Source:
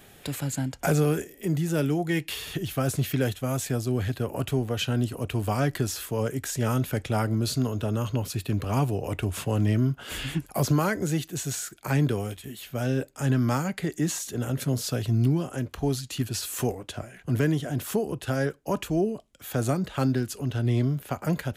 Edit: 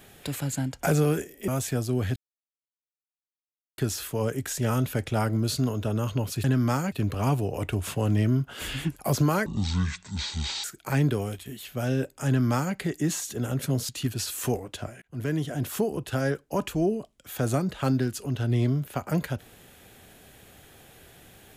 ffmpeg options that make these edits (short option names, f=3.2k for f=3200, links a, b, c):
-filter_complex "[0:a]asplit=10[a][b][c][d][e][f][g][h][i][j];[a]atrim=end=1.482[k];[b]atrim=start=3.458:end=4.14,asetpts=PTS-STARTPTS,afade=t=out:st=0.678:d=0.004:c=hsin[l];[c]atrim=start=4.14:end=5.76,asetpts=PTS-STARTPTS,volume=0[m];[d]atrim=start=5.76:end=8.422,asetpts=PTS-STARTPTS,afade=t=in:d=0.004:c=hsin[n];[e]atrim=start=13.248:end=13.732[o];[f]atrim=start=8.418:end=10.964[p];[g]atrim=start=10.96:end=11.62,asetpts=PTS-STARTPTS,asetrate=24696,aresample=44100[q];[h]atrim=start=11.616:end=14.872[r];[i]atrim=start=16.038:end=17.17,asetpts=PTS-STARTPTS,afade=t=out:st=1.128:d=0.004:c=hsin[s];[j]atrim=start=17.17,asetpts=PTS-STARTPTS,afade=t=in:d=0.69:c=qsin[t];[l][m][n]concat=n=3:v=0:a=1[u];[k][u]acrossfade=d=0.004:c1=hsin:c2=hsin[v];[v][o]acrossfade=d=0.004:c1=hsin:c2=hsin[w];[w][p]acrossfade=d=0.004:c1=hsin:c2=hsin[x];[x][q]acrossfade=d=0.004:c1=hsin:c2=hsin[y];[y][r]acrossfade=d=0.004:c1=hsin:c2=hsin[z];[s][t]concat=n=2:v=0:a=1[aa];[z][aa]acrossfade=d=0.004:c1=hsin:c2=hsin"